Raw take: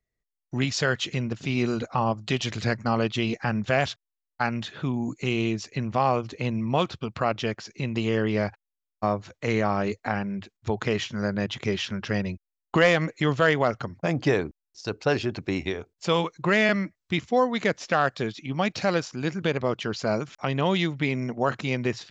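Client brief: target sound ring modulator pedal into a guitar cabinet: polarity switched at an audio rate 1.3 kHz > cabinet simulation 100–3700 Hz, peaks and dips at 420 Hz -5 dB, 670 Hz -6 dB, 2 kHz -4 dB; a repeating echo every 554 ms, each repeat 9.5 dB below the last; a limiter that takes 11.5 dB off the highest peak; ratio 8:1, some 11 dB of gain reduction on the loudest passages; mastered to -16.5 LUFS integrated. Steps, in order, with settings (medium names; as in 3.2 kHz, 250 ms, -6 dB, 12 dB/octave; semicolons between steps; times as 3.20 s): compression 8:1, threshold -27 dBFS; peak limiter -23 dBFS; feedback delay 554 ms, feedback 33%, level -9.5 dB; polarity switched at an audio rate 1.3 kHz; cabinet simulation 100–3700 Hz, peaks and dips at 420 Hz -5 dB, 670 Hz -6 dB, 2 kHz -4 dB; trim +19 dB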